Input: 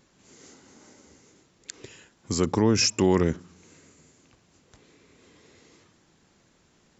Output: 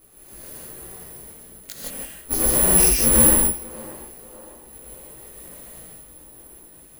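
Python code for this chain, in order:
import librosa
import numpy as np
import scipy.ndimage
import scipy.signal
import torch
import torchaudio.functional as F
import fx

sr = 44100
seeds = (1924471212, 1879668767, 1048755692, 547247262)

p1 = fx.halfwave_hold(x, sr)
p2 = p1 * np.sin(2.0 * np.pi * 150.0 * np.arange(len(p1)) / sr)
p3 = fx.over_compress(p2, sr, threshold_db=-29.0, ratio=-0.5)
p4 = p2 + F.gain(torch.from_numpy(p3), -3.0).numpy()
p5 = fx.chorus_voices(p4, sr, voices=6, hz=1.3, base_ms=19, depth_ms=3.4, mix_pct=55)
p6 = (np.kron(scipy.signal.resample_poly(p5, 1, 4), np.eye(4)[0]) * 4)[:len(p5)]
p7 = p6 + fx.echo_banded(p6, sr, ms=594, feedback_pct=58, hz=670.0, wet_db=-15, dry=0)
p8 = fx.rev_gated(p7, sr, seeds[0], gate_ms=190, shape='rising', drr_db=-3.0)
y = F.gain(torch.from_numpy(p8), -5.0).numpy()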